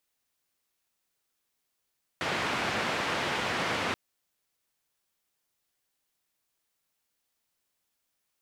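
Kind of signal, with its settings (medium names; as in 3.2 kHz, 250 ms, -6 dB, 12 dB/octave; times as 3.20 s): noise band 100–2200 Hz, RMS -30.5 dBFS 1.73 s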